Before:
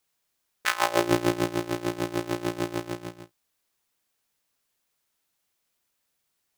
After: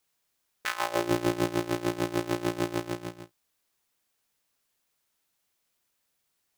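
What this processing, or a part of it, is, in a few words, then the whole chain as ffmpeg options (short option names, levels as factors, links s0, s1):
limiter into clipper: -af "alimiter=limit=0.316:level=0:latency=1:release=184,asoftclip=type=hard:threshold=0.211"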